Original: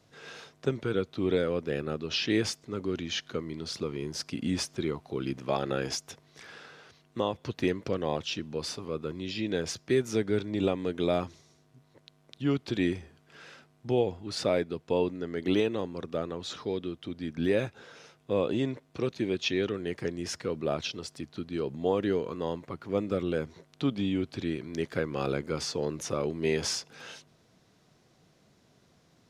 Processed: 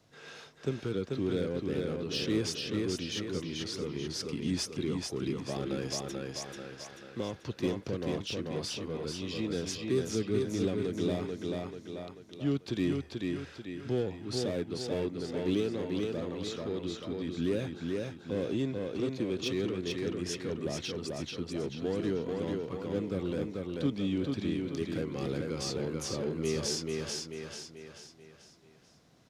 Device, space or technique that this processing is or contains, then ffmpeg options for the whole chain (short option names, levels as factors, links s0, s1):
one-band saturation: -filter_complex "[0:a]aecho=1:1:438|876|1314|1752|2190:0.631|0.271|0.117|0.0502|0.0216,acrossover=split=430|3500[s0][s1][s2];[s1]asoftclip=type=tanh:threshold=0.0112[s3];[s0][s3][s2]amix=inputs=3:normalize=0,volume=0.794"